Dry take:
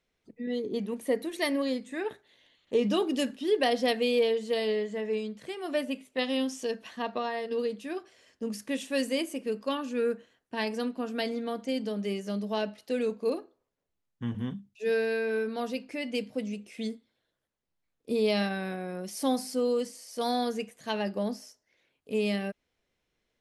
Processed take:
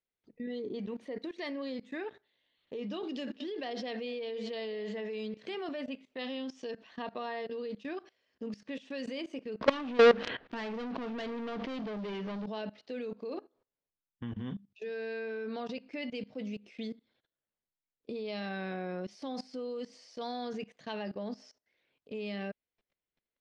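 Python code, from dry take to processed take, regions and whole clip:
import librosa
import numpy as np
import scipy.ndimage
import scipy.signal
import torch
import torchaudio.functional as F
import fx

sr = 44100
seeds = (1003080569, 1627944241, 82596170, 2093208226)

y = fx.chain(x, sr, fx.echo_single(ms=208, db=-20.0),
    fx.band_squash(depth_pct=70), at=(3.03, 5.69))
y = fx.chain(y, sr, fx.lowpass(hz=3500.0, slope=24),
    fx.leveller(passes=5),
    fx.env_flatten(amount_pct=70), at=(9.61, 12.46))
y = scipy.signal.sosfilt(scipy.signal.butter(4, 5000.0, 'lowpass', fs=sr, output='sos'), y)
y = fx.low_shelf(y, sr, hz=160.0, db=-3.5)
y = fx.level_steps(y, sr, step_db=20)
y = y * 10.0 ** (2.5 / 20.0)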